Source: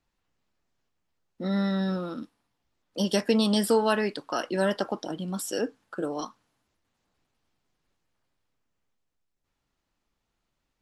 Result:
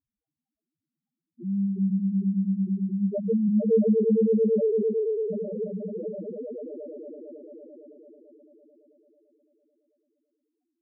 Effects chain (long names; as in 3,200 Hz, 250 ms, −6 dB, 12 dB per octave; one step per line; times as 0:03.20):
notch comb filter 1,200 Hz
echo that builds up and dies away 111 ms, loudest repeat 5, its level −5 dB
spectral peaks only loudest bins 1
level +5 dB